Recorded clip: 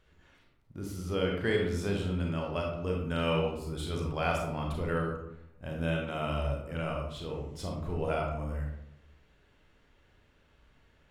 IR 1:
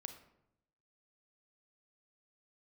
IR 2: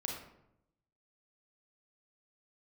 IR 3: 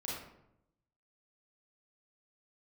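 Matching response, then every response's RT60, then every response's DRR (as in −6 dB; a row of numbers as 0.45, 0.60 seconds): 2; 0.80, 0.80, 0.80 seconds; 7.5, −0.5, −6.0 decibels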